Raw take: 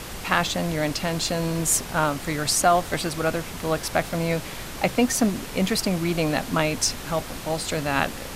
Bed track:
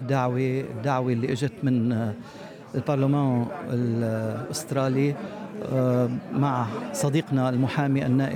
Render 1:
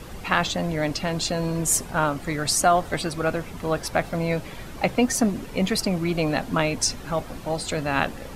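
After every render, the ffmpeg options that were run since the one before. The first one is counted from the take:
-af "afftdn=nr=10:nf=-36"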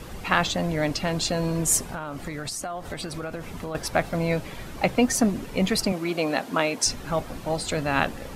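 -filter_complex "[0:a]asettb=1/sr,asplit=3[a][b][c];[a]atrim=end=1.864[d];[b]atrim=start=1.86:end=3.75,asetpts=PTS-STARTPTS,afade=t=in:d=0.004:c=qsin,afade=t=out:st=1.886:d=0.004:c=qsin,acompressor=threshold=-28dB:ratio=16:attack=3.2:release=140:knee=1:detection=peak[e];[c]atrim=start=3.746[f];[d][e]acrossfade=d=0.004:c1=hsin:c2=qsin[g];[g][f]acrossfade=d=0.004:c1=qsin:c2=hsin,asettb=1/sr,asplit=3[h][i][j];[h]atrim=end=5.924[k];[i]atrim=start=5.92:end=6.86,asetpts=PTS-STARTPTS,afade=t=in:d=0.004:c=qsin,afade=t=out:st=0.936:d=0.004:c=qsin,highpass=260[l];[j]atrim=start=6.856[m];[k][l]acrossfade=d=0.004:c1=hsin:c2=qsin[n];[n][m]acrossfade=d=0.004:c1=qsin:c2=hsin"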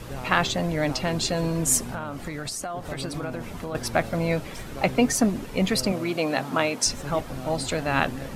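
-filter_complex "[1:a]volume=-14dB[a];[0:a][a]amix=inputs=2:normalize=0"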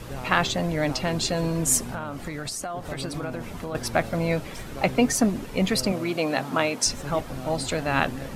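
-af anull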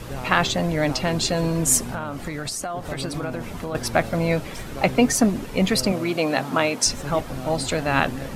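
-af "volume=3dB,alimiter=limit=-3dB:level=0:latency=1"

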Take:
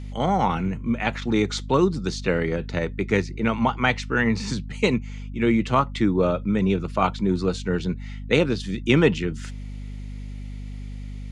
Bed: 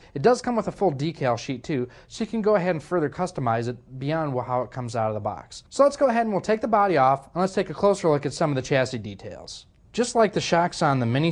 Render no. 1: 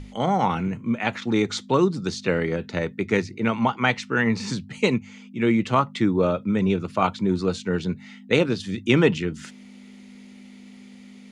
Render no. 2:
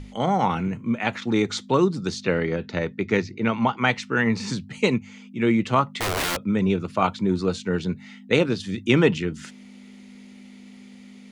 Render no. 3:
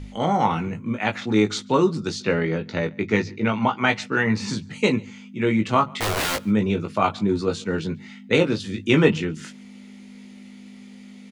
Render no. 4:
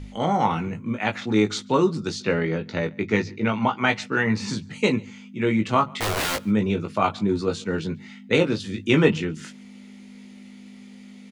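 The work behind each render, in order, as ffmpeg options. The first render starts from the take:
-af "bandreject=f=50:t=h:w=6,bandreject=f=100:t=h:w=6,bandreject=f=150:t=h:w=6"
-filter_complex "[0:a]asettb=1/sr,asplit=3[a][b][c];[a]atrim=end=2.224[d];[b]atrim=start=2.22:end=3.78,asetpts=PTS-STARTPTS,afade=t=in:d=0.004:c=qsin,afade=t=out:st=1.556:d=0.004:c=qsin,lowpass=f=6.5k:w=0.5412,lowpass=f=6.5k:w=1.3066[e];[c]atrim=start=3.776[f];[d][e]acrossfade=d=0.004:c1=hsin:c2=qsin[g];[g][f]acrossfade=d=0.004:c1=qsin:c2=hsin,asettb=1/sr,asplit=3[h][i][j];[h]atrim=end=5.924[k];[i]atrim=start=5.92:end=6.38,asetpts=PTS-STARTPTS,afade=t=in:d=0.004:c=qsin,afade=t=out:st=0.456:d=0.004:c=qsin,aeval=exprs='(mod(9.44*val(0)+1,2)-1)/9.44':c=same[l];[j]atrim=start=6.376[m];[k][l]acrossfade=d=0.004:c1=hsin:c2=qsin[n];[n][m]acrossfade=d=0.004:c1=qsin:c2=hsin"
-filter_complex "[0:a]asplit=2[a][b];[b]adelay=19,volume=-5dB[c];[a][c]amix=inputs=2:normalize=0,asplit=2[d][e];[e]adelay=139.9,volume=-26dB,highshelf=f=4k:g=-3.15[f];[d][f]amix=inputs=2:normalize=0"
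-af "volume=-1dB"

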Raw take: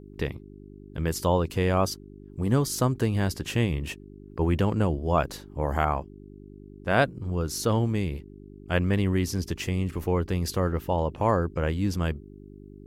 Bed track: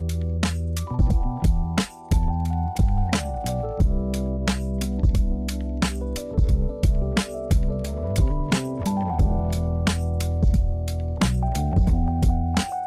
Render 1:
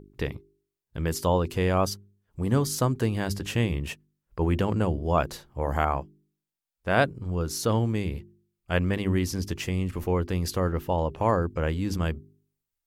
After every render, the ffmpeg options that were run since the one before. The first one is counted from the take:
-af "bandreject=f=50:t=h:w=4,bandreject=f=100:t=h:w=4,bandreject=f=150:t=h:w=4,bandreject=f=200:t=h:w=4,bandreject=f=250:t=h:w=4,bandreject=f=300:t=h:w=4,bandreject=f=350:t=h:w=4,bandreject=f=400:t=h:w=4"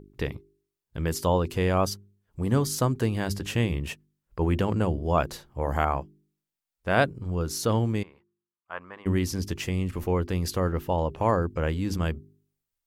-filter_complex "[0:a]asettb=1/sr,asplit=3[a][b][c];[a]atrim=end=8.034[d];[b]atrim=start=8.03:end=9.06,asetpts=PTS-STARTPTS,afade=t=in:d=0.004:c=qsin,afade=t=out:st=1.026:d=0.004:c=qsin,bandpass=f=1.1k:t=q:w=2.9[e];[c]atrim=start=9.056[f];[d][e]acrossfade=d=0.004:c1=hsin:c2=qsin[g];[g][f]acrossfade=d=0.004:c1=qsin:c2=hsin"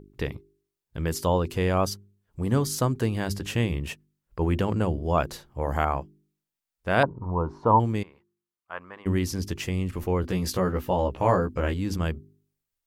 -filter_complex "[0:a]asettb=1/sr,asplit=3[a][b][c];[a]atrim=end=7.034[d];[b]atrim=start=7.03:end=7.8,asetpts=PTS-STARTPTS,afade=t=in:d=0.004:c=qsin,afade=t=out:st=0.766:d=0.004:c=qsin,lowpass=f=960:t=q:w=9.1[e];[c]atrim=start=7.796[f];[d][e]acrossfade=d=0.004:c1=hsin:c2=qsin[g];[g][f]acrossfade=d=0.004:c1=qsin:c2=hsin,asettb=1/sr,asplit=3[h][i][j];[h]atrim=end=10.224[k];[i]atrim=start=10.22:end=11.74,asetpts=PTS-STARTPTS,afade=t=in:d=0.004:c=qsin,afade=t=out:st=1.516:d=0.004:c=qsin,asplit=2[l][m];[m]adelay=16,volume=-3dB[n];[l][n]amix=inputs=2:normalize=0,atrim=end_sample=67032[o];[j]atrim=start=11.736[p];[k][o]acrossfade=d=0.004:c1=hsin:c2=qsin[q];[q][p]acrossfade=d=0.004:c1=qsin:c2=hsin"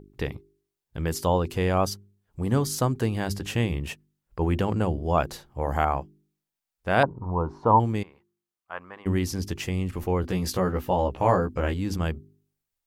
-af "equalizer=f=780:t=o:w=0.23:g=4"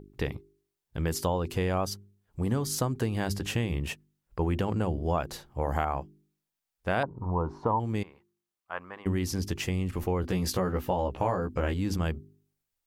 -af "acompressor=threshold=-24dB:ratio=6"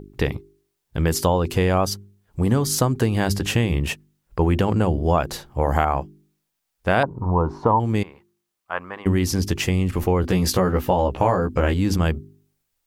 -af "volume=9dB"

